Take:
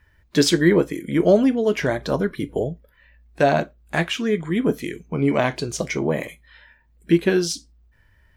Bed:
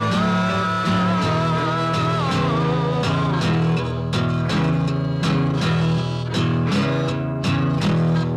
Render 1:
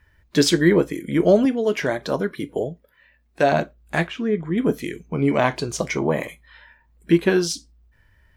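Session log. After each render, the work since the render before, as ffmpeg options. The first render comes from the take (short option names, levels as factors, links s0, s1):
-filter_complex "[0:a]asettb=1/sr,asplit=3[s0][s1][s2];[s0]atrim=end=1.454[s3];[s1]atrim=start=1.45:end=3.52,asetpts=PTS-STARTPTS,afade=t=in:d=0.004:c=qsin,afade=t=out:st=2.066:d=0.004:c=qsin,highpass=f=200:p=1[s4];[s2]atrim=start=3.516[s5];[s3][s4]acrossfade=d=0.004:c1=hsin:c2=qsin[s6];[s6][s5]acrossfade=d=0.004:c1=qsin:c2=hsin,asettb=1/sr,asplit=3[s7][s8][s9];[s7]atrim=end=4.074[s10];[s8]atrim=start=4.07:end=4.58,asetpts=PTS-STARTPTS,afade=t=in:d=0.004:c=qsin,afade=t=out:st=0.506:d=0.004:c=qsin,lowpass=f=1100:p=1[s11];[s9]atrim=start=4.576[s12];[s10][s11]acrossfade=d=0.004:c1=hsin:c2=qsin[s13];[s13][s12]acrossfade=d=0.004:c1=qsin:c2=hsin,asettb=1/sr,asplit=3[s14][s15][s16];[s14]atrim=end=5.414[s17];[s15]atrim=start=5.41:end=7.49,asetpts=PTS-STARTPTS,afade=t=in:d=0.004:c=qsin,afade=t=out:st=2.076:d=0.004:c=qsin,equalizer=f=1000:w=1.5:g=5.5[s18];[s16]atrim=start=7.486[s19];[s17][s18]acrossfade=d=0.004:c1=hsin:c2=qsin[s20];[s20][s19]acrossfade=d=0.004:c1=qsin:c2=hsin"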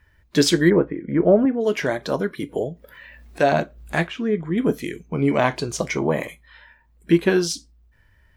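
-filter_complex "[0:a]asplit=3[s0][s1][s2];[s0]afade=t=out:st=0.69:d=0.02[s3];[s1]lowpass=f=1800:w=0.5412,lowpass=f=1800:w=1.3066,afade=t=in:st=0.69:d=0.02,afade=t=out:st=1.6:d=0.02[s4];[s2]afade=t=in:st=1.6:d=0.02[s5];[s3][s4][s5]amix=inputs=3:normalize=0,asettb=1/sr,asplit=3[s6][s7][s8];[s6]atrim=end=2.434[s9];[s7]atrim=start=2.43:end=4.03,asetpts=PTS-STARTPTS,afade=t=in:d=0.004:c=qsin,afade=t=out:st=1.596:d=0.004:c=qsin,acompressor=mode=upward:threshold=0.0316:ratio=2.5:attack=3.2:release=140:knee=2.83:detection=peak[s10];[s8]atrim=start=4.026[s11];[s9][s10]acrossfade=d=0.004:c1=hsin:c2=qsin[s12];[s12][s11]acrossfade=d=0.004:c1=qsin:c2=hsin"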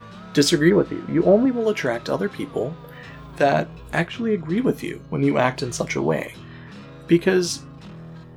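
-filter_complex "[1:a]volume=0.0891[s0];[0:a][s0]amix=inputs=2:normalize=0"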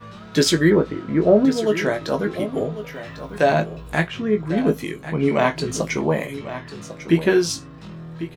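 -filter_complex "[0:a]asplit=2[s0][s1];[s1]adelay=19,volume=0.447[s2];[s0][s2]amix=inputs=2:normalize=0,aecho=1:1:1098:0.224"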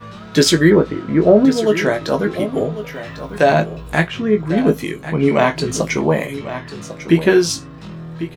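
-af "volume=1.68,alimiter=limit=0.891:level=0:latency=1"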